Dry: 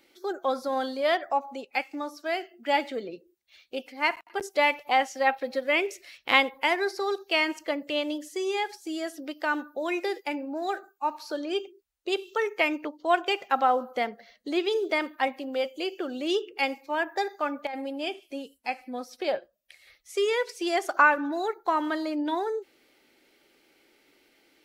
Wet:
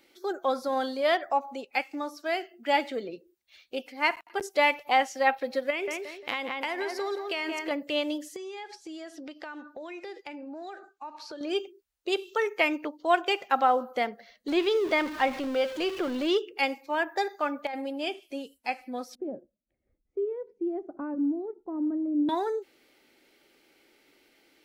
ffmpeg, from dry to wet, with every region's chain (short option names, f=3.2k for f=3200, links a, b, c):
-filter_complex "[0:a]asettb=1/sr,asplit=3[a][b][c];[a]atrim=end=5.704[d];[b]atrim=start=5.7:end=7.71,asetpts=PTS-STARTPTS,afade=t=in:d=0.004:c=qsin,afade=t=out:st=2.006:d=0.004:c=qsin,asplit=2[e][f];[f]adelay=175,lowpass=f=2.3k:p=1,volume=-8.5dB,asplit=2[g][h];[h]adelay=175,lowpass=f=2.3k:p=1,volume=0.4,asplit=2[i][j];[j]adelay=175,lowpass=f=2.3k:p=1,volume=0.4,asplit=2[k][l];[l]adelay=175,lowpass=f=2.3k:p=1,volume=0.4[m];[e][g][i][k][m]amix=inputs=5:normalize=0,atrim=end_sample=88641,acompressor=threshold=-27dB:ratio=6:attack=3.2:release=140:knee=1:detection=peak[n];[c]atrim=start=7.706[o];[d][n]acrossfade=d=0.004:c1=hsin:c2=qsin[p];[p][o]acrossfade=d=0.004:c1=qsin:c2=hsin,asettb=1/sr,asplit=3[q][r][s];[q]atrim=end=8.364[t];[r]atrim=start=8.36:end=11.41,asetpts=PTS-STARTPTS,afade=t=in:d=0.004:c=qsin,afade=t=out:st=3.046:d=0.004:c=qsin,lowpass=6.5k,acompressor=threshold=-38dB:ratio=5:attack=3.2:release=140:knee=1:detection=peak[u];[s]atrim=start=11.406[v];[t][u]acrossfade=d=0.004:c1=hsin:c2=qsin[w];[w][v]acrossfade=d=0.004:c1=qsin:c2=hsin,asettb=1/sr,asplit=3[x][y][z];[x]atrim=end=14.484[aa];[y]atrim=start=14.48:end=16.38,asetpts=PTS-STARTPTS,afade=t=in:d=0.004:c=qsin,afade=t=out:st=1.896:d=0.004:c=qsin,aeval=exprs='val(0)+0.5*0.0224*sgn(val(0))':c=same,acrossover=split=5400[ab][ac];[ac]acompressor=threshold=-54dB:ratio=4:attack=1:release=60[ad];[ab][ad]amix=inputs=2:normalize=0[ae];[z]atrim=start=16.376[af];[aa][ae]acrossfade=d=0.004:c1=hsin:c2=qsin[ag];[ag][af]acrossfade=d=0.004:c1=qsin:c2=hsin,asettb=1/sr,asplit=3[ah][ai][aj];[ah]atrim=end=19.154[ak];[ai]atrim=start=19.15:end=22.29,asetpts=PTS-STARTPTS,afade=t=in:d=0.004:c=qsin,afade=t=out:st=3.136:d=0.004:c=qsin,lowpass=f=260:t=q:w=2.3,asubboost=boost=2.5:cutoff=78[al];[aj]atrim=start=22.286[am];[ak][al]acrossfade=d=0.004:c1=hsin:c2=qsin[an];[an][am]acrossfade=d=0.004:c1=qsin:c2=hsin"